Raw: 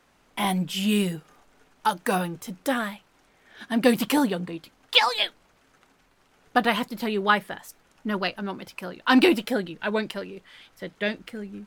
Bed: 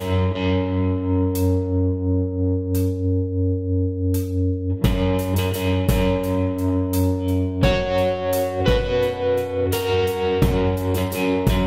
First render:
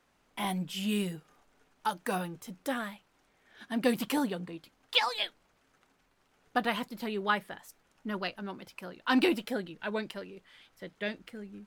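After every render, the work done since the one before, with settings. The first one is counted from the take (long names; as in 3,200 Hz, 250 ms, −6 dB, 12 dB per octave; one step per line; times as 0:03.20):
level −8 dB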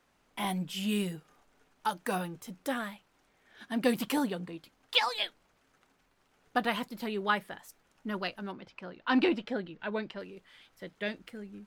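0:08.52–0:10.20: high-frequency loss of the air 140 metres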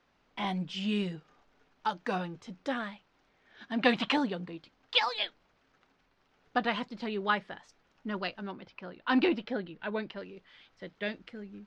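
low-pass filter 5,500 Hz 24 dB per octave
0:03.79–0:04.16: gain on a spectral selection 570–4,200 Hz +8 dB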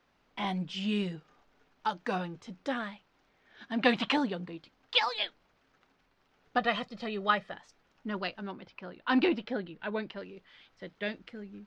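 0:06.58–0:07.52: comb filter 1.6 ms, depth 59%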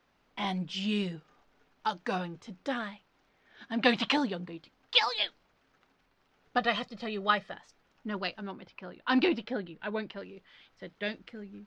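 dynamic equaliser 5,200 Hz, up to +5 dB, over −47 dBFS, Q 0.98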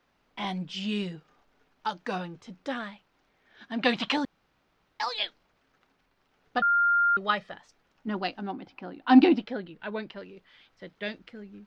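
0:04.25–0:05.00: fill with room tone
0:06.62–0:07.17: beep over 1,400 Hz −19.5 dBFS
0:08.07–0:09.44: hollow resonant body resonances 280/760 Hz, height 13 dB, ringing for 40 ms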